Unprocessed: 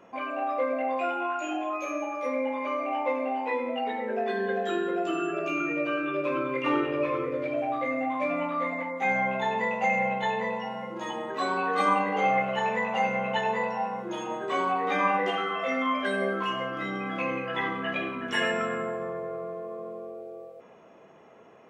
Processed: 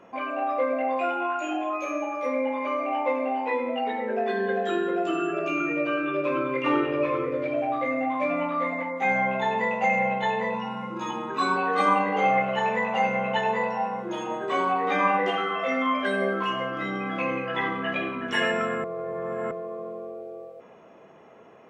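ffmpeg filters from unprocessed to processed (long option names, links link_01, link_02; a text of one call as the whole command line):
ffmpeg -i in.wav -filter_complex "[0:a]asettb=1/sr,asplit=3[link_01][link_02][link_03];[link_01]atrim=end=10.544[link_04];[link_02]atrim=start=10.54:end=11.56,asetpts=PTS-STARTPTS,afade=type=in:duration=0.004:curve=qsin,afade=type=out:start_time=1.016:duration=0.004:curve=qsin,aecho=1:1:0.8:0.67,atrim=end_sample=44982[link_05];[link_03]atrim=start=11.556[link_06];[link_04][link_05]acrossfade=duration=0.004:curve1=hsin:curve2=qsin[link_07];[link_07][link_06]acrossfade=duration=0.004:curve1=qsin:curve2=hsin,asplit=3[link_08][link_09][link_10];[link_08]atrim=end=18.842[link_11];[link_09]atrim=start=18.838:end=19.512,asetpts=PTS-STARTPTS,areverse[link_12];[link_10]atrim=start=19.508[link_13];[link_11][link_12]acrossfade=duration=0.004:curve1=hsin:curve2=hsin[link_14];[link_14][link_13]acrossfade=duration=0.004:curve1=hsin:curve2=hsin,highshelf=frequency=5700:gain=-5,volume=2.5dB" out.wav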